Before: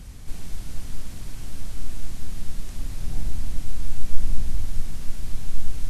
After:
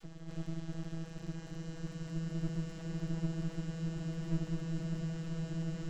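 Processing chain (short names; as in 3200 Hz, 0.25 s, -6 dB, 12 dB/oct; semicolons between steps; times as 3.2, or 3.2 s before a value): vocoder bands 32, square 163 Hz; half-wave rectifier; bloom reverb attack 1.73 s, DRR 1 dB; gain +9 dB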